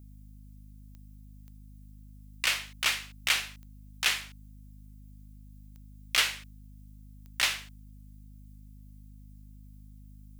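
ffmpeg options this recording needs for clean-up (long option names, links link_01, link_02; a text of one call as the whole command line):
ffmpeg -i in.wav -af "adeclick=threshold=4,bandreject=frequency=51.2:width_type=h:width=4,bandreject=frequency=102.4:width_type=h:width=4,bandreject=frequency=153.6:width_type=h:width=4,bandreject=frequency=204.8:width_type=h:width=4,bandreject=frequency=256:width_type=h:width=4,agate=range=-21dB:threshold=-42dB" out.wav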